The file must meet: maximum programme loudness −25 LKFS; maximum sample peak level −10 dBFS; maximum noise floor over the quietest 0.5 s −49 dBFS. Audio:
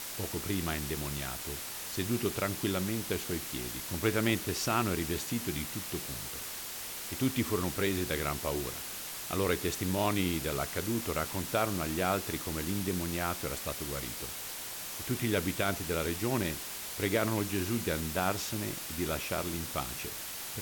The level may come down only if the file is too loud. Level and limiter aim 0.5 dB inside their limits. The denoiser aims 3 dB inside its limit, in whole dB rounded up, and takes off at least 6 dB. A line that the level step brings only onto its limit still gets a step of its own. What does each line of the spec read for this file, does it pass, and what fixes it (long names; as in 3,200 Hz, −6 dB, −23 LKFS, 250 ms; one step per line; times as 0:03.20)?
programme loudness −33.0 LKFS: in spec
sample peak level −16.5 dBFS: in spec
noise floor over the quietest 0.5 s −41 dBFS: out of spec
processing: broadband denoise 11 dB, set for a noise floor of −41 dBFS